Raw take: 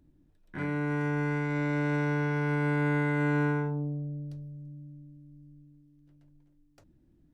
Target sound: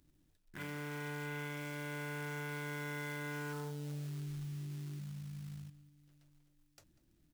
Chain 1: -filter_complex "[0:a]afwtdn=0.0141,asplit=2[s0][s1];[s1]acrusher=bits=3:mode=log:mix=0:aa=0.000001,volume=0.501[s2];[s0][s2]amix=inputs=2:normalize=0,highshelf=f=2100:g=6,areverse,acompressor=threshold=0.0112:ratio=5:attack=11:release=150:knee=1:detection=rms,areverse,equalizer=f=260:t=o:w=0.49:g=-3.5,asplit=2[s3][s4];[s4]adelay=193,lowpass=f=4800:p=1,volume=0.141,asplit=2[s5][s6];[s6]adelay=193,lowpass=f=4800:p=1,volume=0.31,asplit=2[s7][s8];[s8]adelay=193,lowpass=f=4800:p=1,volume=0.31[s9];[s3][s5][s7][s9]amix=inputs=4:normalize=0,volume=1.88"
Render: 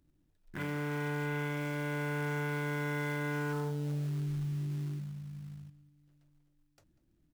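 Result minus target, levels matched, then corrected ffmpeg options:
compression: peak gain reduction -8.5 dB; 4 kHz band -5.0 dB
-filter_complex "[0:a]afwtdn=0.0141,asplit=2[s0][s1];[s1]acrusher=bits=3:mode=log:mix=0:aa=0.000001,volume=0.501[s2];[s0][s2]amix=inputs=2:normalize=0,highshelf=f=2100:g=14.5,areverse,acompressor=threshold=0.00376:ratio=5:attack=11:release=150:knee=1:detection=rms,areverse,equalizer=f=260:t=o:w=0.49:g=-3.5,asplit=2[s3][s4];[s4]adelay=193,lowpass=f=4800:p=1,volume=0.141,asplit=2[s5][s6];[s6]adelay=193,lowpass=f=4800:p=1,volume=0.31,asplit=2[s7][s8];[s8]adelay=193,lowpass=f=4800:p=1,volume=0.31[s9];[s3][s5][s7][s9]amix=inputs=4:normalize=0,volume=1.88"

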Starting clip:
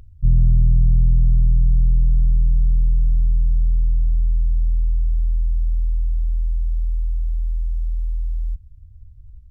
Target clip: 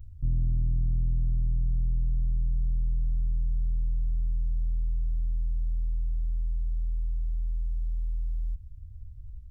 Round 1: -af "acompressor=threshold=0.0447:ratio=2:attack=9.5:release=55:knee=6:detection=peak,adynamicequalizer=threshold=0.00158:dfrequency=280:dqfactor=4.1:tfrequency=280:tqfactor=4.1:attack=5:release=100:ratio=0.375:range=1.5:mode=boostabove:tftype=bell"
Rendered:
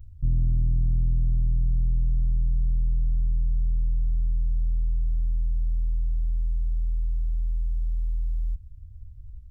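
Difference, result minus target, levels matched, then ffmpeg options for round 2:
compression: peak gain reduction -3.5 dB
-af "acompressor=threshold=0.02:ratio=2:attack=9.5:release=55:knee=6:detection=peak,adynamicequalizer=threshold=0.00158:dfrequency=280:dqfactor=4.1:tfrequency=280:tqfactor=4.1:attack=5:release=100:ratio=0.375:range=1.5:mode=boostabove:tftype=bell"

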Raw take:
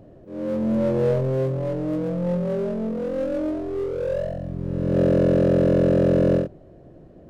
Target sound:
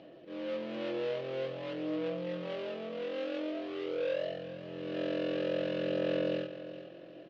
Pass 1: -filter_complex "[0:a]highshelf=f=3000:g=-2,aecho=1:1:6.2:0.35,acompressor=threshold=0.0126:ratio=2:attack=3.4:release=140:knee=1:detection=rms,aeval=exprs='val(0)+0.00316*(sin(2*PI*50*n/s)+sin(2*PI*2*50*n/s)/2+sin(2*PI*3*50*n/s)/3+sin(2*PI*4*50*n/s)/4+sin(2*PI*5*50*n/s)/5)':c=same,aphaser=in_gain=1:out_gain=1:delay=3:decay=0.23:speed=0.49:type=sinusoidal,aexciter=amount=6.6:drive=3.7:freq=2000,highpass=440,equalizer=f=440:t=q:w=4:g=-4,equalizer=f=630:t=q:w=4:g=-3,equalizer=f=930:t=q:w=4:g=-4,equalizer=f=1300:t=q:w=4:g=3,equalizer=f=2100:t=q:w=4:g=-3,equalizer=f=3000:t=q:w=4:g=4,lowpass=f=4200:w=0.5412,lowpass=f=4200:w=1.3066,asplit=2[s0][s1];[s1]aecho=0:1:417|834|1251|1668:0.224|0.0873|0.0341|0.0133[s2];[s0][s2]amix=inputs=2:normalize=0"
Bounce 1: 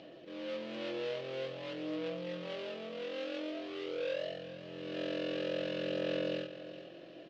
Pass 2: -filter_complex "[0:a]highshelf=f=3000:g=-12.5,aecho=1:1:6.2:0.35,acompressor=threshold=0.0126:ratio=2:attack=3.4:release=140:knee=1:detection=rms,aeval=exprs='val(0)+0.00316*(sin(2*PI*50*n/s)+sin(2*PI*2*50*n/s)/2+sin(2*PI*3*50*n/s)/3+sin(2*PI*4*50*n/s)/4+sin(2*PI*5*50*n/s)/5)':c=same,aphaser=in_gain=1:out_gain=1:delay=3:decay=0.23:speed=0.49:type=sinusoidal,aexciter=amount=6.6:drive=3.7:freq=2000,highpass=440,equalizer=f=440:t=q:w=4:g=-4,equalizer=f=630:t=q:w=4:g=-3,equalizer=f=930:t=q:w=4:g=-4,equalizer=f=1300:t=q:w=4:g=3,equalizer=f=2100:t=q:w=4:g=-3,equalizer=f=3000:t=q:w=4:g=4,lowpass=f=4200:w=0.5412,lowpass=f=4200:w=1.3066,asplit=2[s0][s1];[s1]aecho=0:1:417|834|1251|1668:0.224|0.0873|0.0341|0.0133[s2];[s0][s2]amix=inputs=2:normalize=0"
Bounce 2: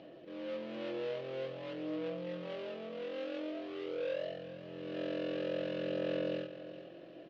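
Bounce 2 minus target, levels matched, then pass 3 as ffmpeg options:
compression: peak gain reduction +4 dB
-filter_complex "[0:a]highshelf=f=3000:g=-12.5,aecho=1:1:6.2:0.35,acompressor=threshold=0.0299:ratio=2:attack=3.4:release=140:knee=1:detection=rms,aeval=exprs='val(0)+0.00316*(sin(2*PI*50*n/s)+sin(2*PI*2*50*n/s)/2+sin(2*PI*3*50*n/s)/3+sin(2*PI*4*50*n/s)/4+sin(2*PI*5*50*n/s)/5)':c=same,aphaser=in_gain=1:out_gain=1:delay=3:decay=0.23:speed=0.49:type=sinusoidal,aexciter=amount=6.6:drive=3.7:freq=2000,highpass=440,equalizer=f=440:t=q:w=4:g=-4,equalizer=f=630:t=q:w=4:g=-3,equalizer=f=930:t=q:w=4:g=-4,equalizer=f=1300:t=q:w=4:g=3,equalizer=f=2100:t=q:w=4:g=-3,equalizer=f=3000:t=q:w=4:g=4,lowpass=f=4200:w=0.5412,lowpass=f=4200:w=1.3066,asplit=2[s0][s1];[s1]aecho=0:1:417|834|1251|1668:0.224|0.0873|0.0341|0.0133[s2];[s0][s2]amix=inputs=2:normalize=0"

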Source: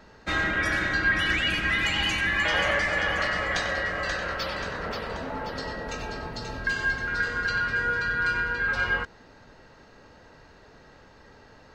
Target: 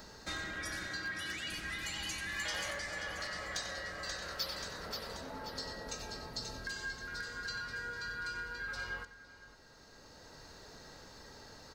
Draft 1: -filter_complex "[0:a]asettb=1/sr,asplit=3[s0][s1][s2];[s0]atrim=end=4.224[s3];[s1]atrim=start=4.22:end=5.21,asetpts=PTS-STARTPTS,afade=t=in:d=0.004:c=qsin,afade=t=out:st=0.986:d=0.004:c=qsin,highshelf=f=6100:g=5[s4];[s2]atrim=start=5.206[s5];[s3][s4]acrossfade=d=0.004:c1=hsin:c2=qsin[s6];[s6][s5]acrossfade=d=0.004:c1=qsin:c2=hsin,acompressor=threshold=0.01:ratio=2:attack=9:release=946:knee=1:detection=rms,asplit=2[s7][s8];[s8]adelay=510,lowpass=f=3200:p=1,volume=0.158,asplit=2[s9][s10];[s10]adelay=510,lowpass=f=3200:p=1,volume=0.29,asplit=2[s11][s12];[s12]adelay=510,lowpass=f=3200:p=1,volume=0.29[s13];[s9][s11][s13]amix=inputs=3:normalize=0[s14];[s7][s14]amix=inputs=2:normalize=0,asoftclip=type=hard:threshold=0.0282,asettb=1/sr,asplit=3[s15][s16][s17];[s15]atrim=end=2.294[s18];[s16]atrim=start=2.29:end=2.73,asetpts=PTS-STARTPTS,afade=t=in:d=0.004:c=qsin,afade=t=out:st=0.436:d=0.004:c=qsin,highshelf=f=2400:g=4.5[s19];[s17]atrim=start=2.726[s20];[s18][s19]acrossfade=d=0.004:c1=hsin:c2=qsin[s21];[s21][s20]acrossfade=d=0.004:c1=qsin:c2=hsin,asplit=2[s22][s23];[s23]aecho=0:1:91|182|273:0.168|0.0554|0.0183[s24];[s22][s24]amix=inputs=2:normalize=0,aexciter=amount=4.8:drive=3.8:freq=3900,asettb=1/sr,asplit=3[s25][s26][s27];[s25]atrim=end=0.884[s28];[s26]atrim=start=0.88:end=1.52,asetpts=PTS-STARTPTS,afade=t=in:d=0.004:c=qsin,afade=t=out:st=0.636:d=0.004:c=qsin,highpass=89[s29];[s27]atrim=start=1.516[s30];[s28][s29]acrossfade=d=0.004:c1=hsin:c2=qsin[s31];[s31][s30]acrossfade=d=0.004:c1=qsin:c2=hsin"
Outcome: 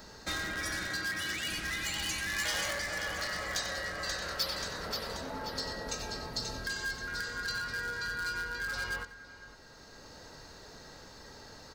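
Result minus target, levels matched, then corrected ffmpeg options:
compression: peak gain reduction -5 dB
-filter_complex "[0:a]asettb=1/sr,asplit=3[s0][s1][s2];[s0]atrim=end=4.224[s3];[s1]atrim=start=4.22:end=5.21,asetpts=PTS-STARTPTS,afade=t=in:d=0.004:c=qsin,afade=t=out:st=0.986:d=0.004:c=qsin,highshelf=f=6100:g=5[s4];[s2]atrim=start=5.206[s5];[s3][s4]acrossfade=d=0.004:c1=hsin:c2=qsin[s6];[s6][s5]acrossfade=d=0.004:c1=qsin:c2=hsin,acompressor=threshold=0.00299:ratio=2:attack=9:release=946:knee=1:detection=rms,asplit=2[s7][s8];[s8]adelay=510,lowpass=f=3200:p=1,volume=0.158,asplit=2[s9][s10];[s10]adelay=510,lowpass=f=3200:p=1,volume=0.29,asplit=2[s11][s12];[s12]adelay=510,lowpass=f=3200:p=1,volume=0.29[s13];[s9][s11][s13]amix=inputs=3:normalize=0[s14];[s7][s14]amix=inputs=2:normalize=0,asoftclip=type=hard:threshold=0.0282,asettb=1/sr,asplit=3[s15][s16][s17];[s15]atrim=end=2.294[s18];[s16]atrim=start=2.29:end=2.73,asetpts=PTS-STARTPTS,afade=t=in:d=0.004:c=qsin,afade=t=out:st=0.436:d=0.004:c=qsin,highshelf=f=2400:g=4.5[s19];[s17]atrim=start=2.726[s20];[s18][s19]acrossfade=d=0.004:c1=hsin:c2=qsin[s21];[s21][s20]acrossfade=d=0.004:c1=qsin:c2=hsin,asplit=2[s22][s23];[s23]aecho=0:1:91|182|273:0.168|0.0554|0.0183[s24];[s22][s24]amix=inputs=2:normalize=0,aexciter=amount=4.8:drive=3.8:freq=3900,asettb=1/sr,asplit=3[s25][s26][s27];[s25]atrim=end=0.884[s28];[s26]atrim=start=0.88:end=1.52,asetpts=PTS-STARTPTS,afade=t=in:d=0.004:c=qsin,afade=t=out:st=0.636:d=0.004:c=qsin,highpass=89[s29];[s27]atrim=start=1.516[s30];[s28][s29]acrossfade=d=0.004:c1=hsin:c2=qsin[s31];[s31][s30]acrossfade=d=0.004:c1=qsin:c2=hsin"

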